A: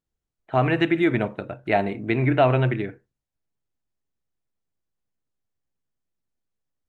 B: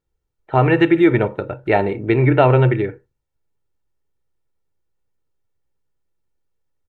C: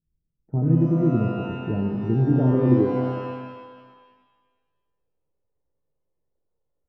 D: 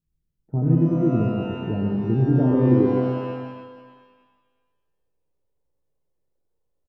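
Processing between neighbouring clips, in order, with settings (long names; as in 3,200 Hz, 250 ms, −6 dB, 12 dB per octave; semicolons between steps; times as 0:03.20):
high-shelf EQ 2,100 Hz −8 dB; comb filter 2.2 ms, depth 51%; level +7 dB
low-pass filter sweep 200 Hz → 600 Hz, 0:02.24–0:03.83; reverb with rising layers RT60 1.5 s, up +12 semitones, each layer −8 dB, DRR 4.5 dB; level −3.5 dB
single-tap delay 129 ms −7.5 dB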